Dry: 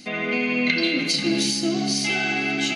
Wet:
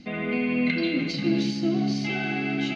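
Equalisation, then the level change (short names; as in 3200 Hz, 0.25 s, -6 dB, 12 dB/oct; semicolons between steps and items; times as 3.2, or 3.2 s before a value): air absorption 200 m; low shelf 220 Hz +11.5 dB; -4.5 dB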